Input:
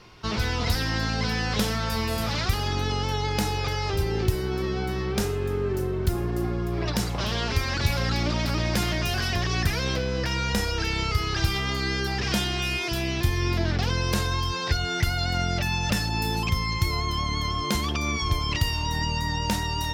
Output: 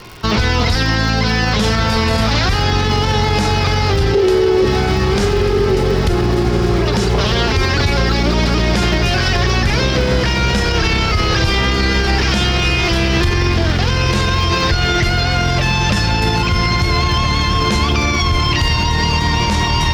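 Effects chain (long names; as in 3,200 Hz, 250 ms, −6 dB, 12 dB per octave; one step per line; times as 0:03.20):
low-pass filter 6,400 Hz 12 dB per octave
surface crackle 170 per second −40 dBFS
0:04.14–0:04.65: high-pass with resonance 420 Hz, resonance Q 4.9
feedback delay with all-pass diffusion 1,466 ms, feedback 65%, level −8 dB
boost into a limiter +19 dB
level −5 dB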